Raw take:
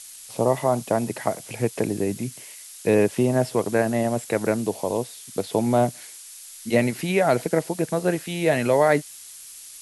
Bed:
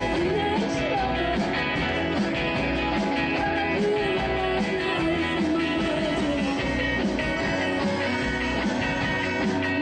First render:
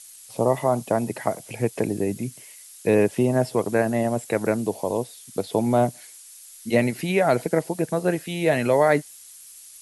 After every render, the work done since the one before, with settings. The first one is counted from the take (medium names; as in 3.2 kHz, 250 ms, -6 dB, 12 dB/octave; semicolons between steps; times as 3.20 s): noise reduction 6 dB, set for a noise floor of -43 dBFS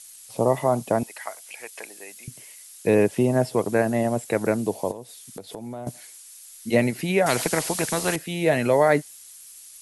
1.03–2.28 s: high-pass 1.3 kHz; 4.91–5.87 s: compression 4:1, threshold -35 dBFS; 7.26–8.16 s: spectrum-flattening compressor 2:1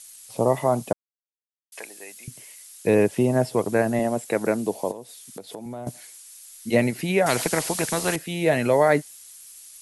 0.93–1.72 s: mute; 3.99–5.66 s: high-pass 150 Hz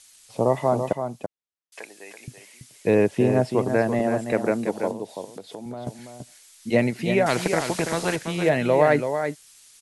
distance through air 59 m; delay 333 ms -7.5 dB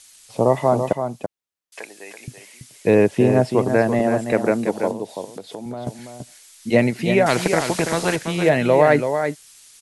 trim +4 dB; peak limiter -3 dBFS, peak gain reduction 1 dB